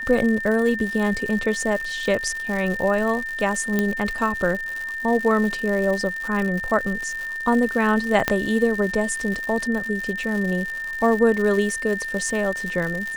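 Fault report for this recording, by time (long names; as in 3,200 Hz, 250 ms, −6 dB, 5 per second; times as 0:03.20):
surface crackle 170 per second −27 dBFS
whistle 1,800 Hz −27 dBFS
0:03.79: click −8 dBFS
0:08.28: click −4 dBFS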